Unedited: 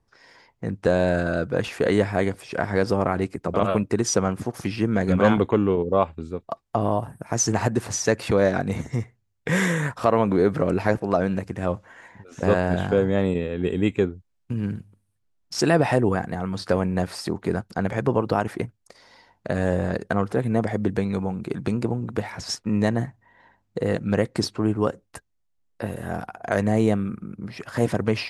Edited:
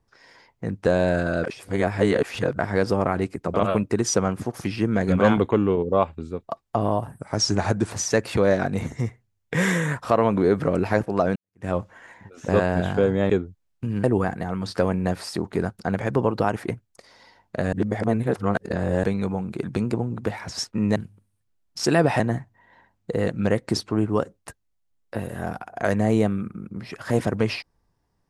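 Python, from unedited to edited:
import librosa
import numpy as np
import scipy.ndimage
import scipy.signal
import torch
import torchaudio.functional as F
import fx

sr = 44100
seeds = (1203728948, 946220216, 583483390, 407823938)

y = fx.edit(x, sr, fx.reverse_span(start_s=1.44, length_s=1.15),
    fx.speed_span(start_s=7.19, length_s=0.66, speed=0.92),
    fx.fade_in_span(start_s=11.3, length_s=0.29, curve='exp'),
    fx.cut(start_s=13.24, length_s=0.73),
    fx.move(start_s=14.71, length_s=1.24, to_s=22.87),
    fx.reverse_span(start_s=19.64, length_s=1.31), tone=tone)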